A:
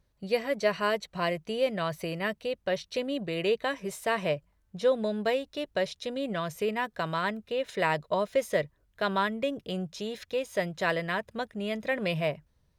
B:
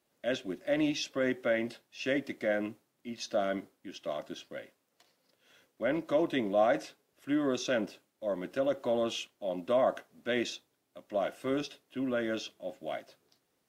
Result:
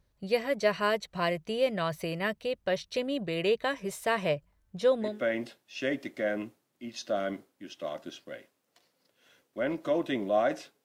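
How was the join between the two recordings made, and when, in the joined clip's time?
A
0:05.11: continue with B from 0:01.35, crossfade 0.22 s

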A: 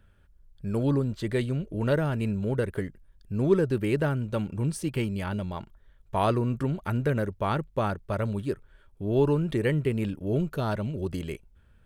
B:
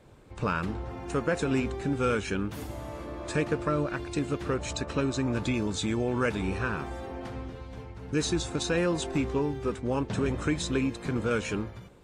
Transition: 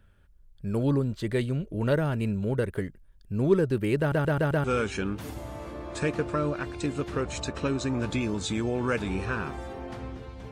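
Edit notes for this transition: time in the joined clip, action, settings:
A
0:03.99: stutter in place 0.13 s, 5 plays
0:04.64: continue with B from 0:01.97

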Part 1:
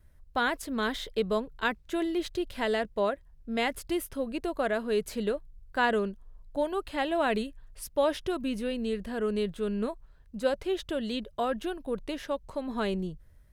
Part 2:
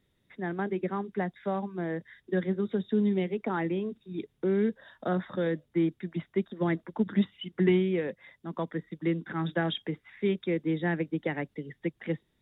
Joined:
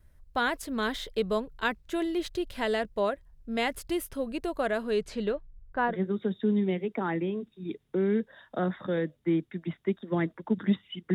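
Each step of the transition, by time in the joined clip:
part 1
0:04.90–0:05.97: low-pass filter 8,500 Hz → 1,100 Hz
0:05.92: continue with part 2 from 0:02.41, crossfade 0.10 s

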